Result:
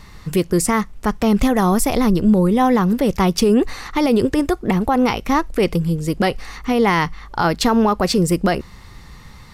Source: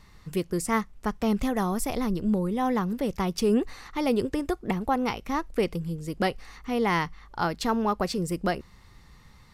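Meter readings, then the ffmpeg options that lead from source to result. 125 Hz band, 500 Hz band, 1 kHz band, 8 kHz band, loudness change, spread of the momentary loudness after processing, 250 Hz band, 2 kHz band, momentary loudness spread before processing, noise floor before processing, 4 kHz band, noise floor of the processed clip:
+11.5 dB, +9.5 dB, +9.0 dB, +12.0 dB, +10.0 dB, 6 LU, +10.5 dB, +9.0 dB, 7 LU, −53 dBFS, +10.5 dB, −41 dBFS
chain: -af "alimiter=level_in=18.5dB:limit=-1dB:release=50:level=0:latency=1,volume=-6dB"

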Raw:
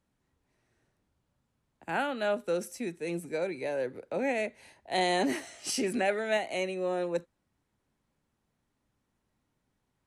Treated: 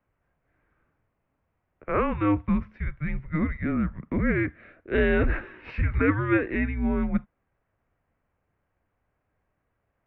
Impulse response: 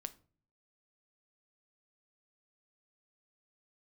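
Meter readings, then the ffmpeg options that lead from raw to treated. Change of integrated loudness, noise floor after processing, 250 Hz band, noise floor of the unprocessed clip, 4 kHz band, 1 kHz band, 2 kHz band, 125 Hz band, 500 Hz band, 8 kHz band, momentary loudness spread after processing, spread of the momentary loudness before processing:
+5.0 dB, −77 dBFS, +10.0 dB, −80 dBFS, −11.5 dB, +0.5 dB, +5.0 dB, +17.0 dB, +0.5 dB, below −40 dB, 9 LU, 8 LU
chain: -af "highpass=frequency=200:width_type=q:width=0.5412,highpass=frequency=200:width_type=q:width=1.307,lowpass=frequency=2700:width_type=q:width=0.5176,lowpass=frequency=2700:width_type=q:width=0.7071,lowpass=frequency=2700:width_type=q:width=1.932,afreqshift=-310,volume=6.5dB"

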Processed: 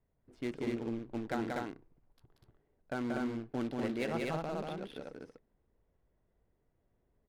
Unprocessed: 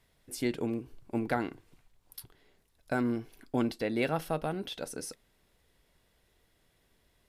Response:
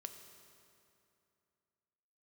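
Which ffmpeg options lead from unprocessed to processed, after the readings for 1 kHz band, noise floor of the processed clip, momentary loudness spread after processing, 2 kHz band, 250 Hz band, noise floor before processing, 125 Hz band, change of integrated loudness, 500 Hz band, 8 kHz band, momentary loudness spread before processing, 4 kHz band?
−4.0 dB, −78 dBFS, 11 LU, −4.5 dB, −3.5 dB, −71 dBFS, −4.0 dB, −4.0 dB, −4.0 dB, −13.0 dB, 13 LU, −6.5 dB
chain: -af "acrusher=bits=3:mode=log:mix=0:aa=0.000001,adynamicsmooth=sensitivity=7:basefreq=970,aecho=1:1:183.7|244.9:0.708|0.794,volume=-7dB"

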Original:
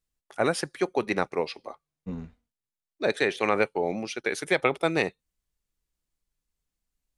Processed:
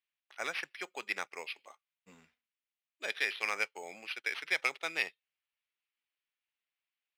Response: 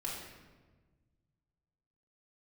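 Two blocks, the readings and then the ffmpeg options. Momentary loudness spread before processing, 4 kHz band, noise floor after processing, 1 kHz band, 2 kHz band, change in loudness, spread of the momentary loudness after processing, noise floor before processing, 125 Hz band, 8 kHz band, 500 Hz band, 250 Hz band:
15 LU, −3.5 dB, below −85 dBFS, −12.5 dB, −4.0 dB, −8.5 dB, 11 LU, below −85 dBFS, below −25 dB, −7.5 dB, −19.5 dB, −24.0 dB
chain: -af "acrusher=samples=6:mix=1:aa=0.000001,bandpass=frequency=2600:width_type=q:width=1.8:csg=0"

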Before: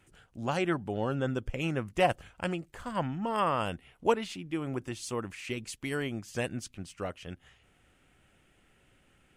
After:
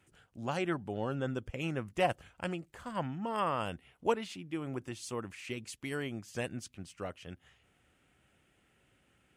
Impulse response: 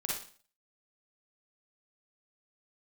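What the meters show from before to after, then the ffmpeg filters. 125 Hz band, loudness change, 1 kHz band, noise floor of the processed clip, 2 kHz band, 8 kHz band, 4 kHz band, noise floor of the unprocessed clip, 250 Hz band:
−4.0 dB, −4.0 dB, −4.0 dB, −72 dBFS, −4.0 dB, −4.0 dB, −4.0 dB, −67 dBFS, −4.0 dB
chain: -af "highpass=54,volume=-4dB"

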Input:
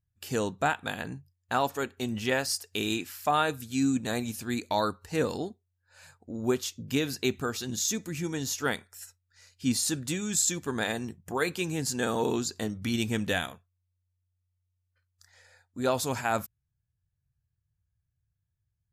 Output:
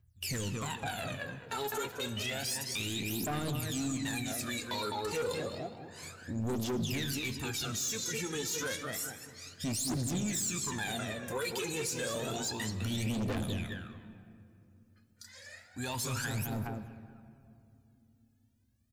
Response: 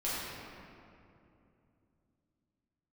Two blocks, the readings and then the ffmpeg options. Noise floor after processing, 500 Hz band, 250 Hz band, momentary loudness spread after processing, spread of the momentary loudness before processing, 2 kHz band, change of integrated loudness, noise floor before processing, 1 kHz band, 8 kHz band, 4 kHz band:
−67 dBFS, −7.0 dB, −6.0 dB, 13 LU, 8 LU, −5.0 dB, −5.0 dB, −81 dBFS, −8.5 dB, −3.0 dB, −2.0 dB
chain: -filter_complex "[0:a]lowshelf=frequency=160:gain=5.5,acrossover=split=450|3000[link_01][link_02][link_03];[link_02]acompressor=threshold=-36dB:ratio=6[link_04];[link_01][link_04][link_03]amix=inputs=3:normalize=0,highpass=56,asplit=2[link_05][link_06];[link_06]adelay=207,lowpass=frequency=2400:poles=1,volume=-5dB,asplit=2[link_07][link_08];[link_08]adelay=207,lowpass=frequency=2400:poles=1,volume=0.31,asplit=2[link_09][link_10];[link_10]adelay=207,lowpass=frequency=2400:poles=1,volume=0.31,asplit=2[link_11][link_12];[link_12]adelay=207,lowpass=frequency=2400:poles=1,volume=0.31[link_13];[link_05][link_07][link_09][link_11][link_13]amix=inputs=5:normalize=0,asplit=2[link_14][link_15];[link_15]acompressor=threshold=-35dB:ratio=6,volume=2.5dB[link_16];[link_14][link_16]amix=inputs=2:normalize=0,aphaser=in_gain=1:out_gain=1:delay=2.4:decay=0.79:speed=0.3:type=triangular,asoftclip=type=tanh:threshold=-18.5dB,flanger=delay=2.5:depth=9.4:regen=-68:speed=1.2:shape=sinusoidal,tiltshelf=frequency=1100:gain=-3.5,alimiter=level_in=2.5dB:limit=-24dB:level=0:latency=1:release=27,volume=-2.5dB,asplit=2[link_17][link_18];[1:a]atrim=start_sample=2205,adelay=69[link_19];[link_18][link_19]afir=irnorm=-1:irlink=0,volume=-20dB[link_20];[link_17][link_20]amix=inputs=2:normalize=0,volume=-1.5dB"

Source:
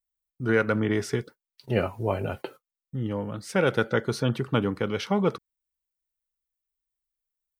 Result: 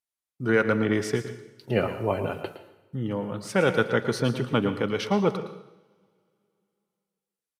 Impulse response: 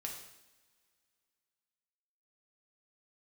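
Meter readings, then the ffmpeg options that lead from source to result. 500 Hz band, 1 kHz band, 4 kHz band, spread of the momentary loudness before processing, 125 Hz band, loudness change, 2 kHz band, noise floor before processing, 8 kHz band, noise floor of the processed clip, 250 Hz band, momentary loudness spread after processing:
+1.5 dB, +1.5 dB, +1.5 dB, 10 LU, −1.0 dB, +1.0 dB, +1.5 dB, below −85 dBFS, +1.5 dB, below −85 dBFS, +1.0 dB, 14 LU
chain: -filter_complex "[0:a]highpass=110,asplit=2[link_01][link_02];[1:a]atrim=start_sample=2205,adelay=113[link_03];[link_02][link_03]afir=irnorm=-1:irlink=0,volume=-8dB[link_04];[link_01][link_04]amix=inputs=2:normalize=0,aresample=32000,aresample=44100,volume=1dB"

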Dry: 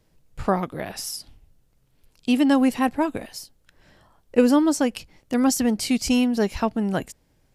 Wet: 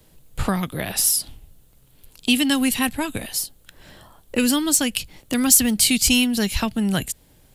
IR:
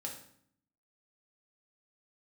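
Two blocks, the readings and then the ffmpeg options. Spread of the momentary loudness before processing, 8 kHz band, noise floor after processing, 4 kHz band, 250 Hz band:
15 LU, +13.0 dB, −55 dBFS, +10.5 dB, −1.0 dB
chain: -filter_complex "[0:a]acrossover=split=180|1700|5400[link_01][link_02][link_03][link_04];[link_02]acompressor=threshold=-36dB:ratio=5[link_05];[link_01][link_05][link_03][link_04]amix=inputs=4:normalize=0,aexciter=amount=1.1:drive=7.8:freq=3000,volume=8.5dB"

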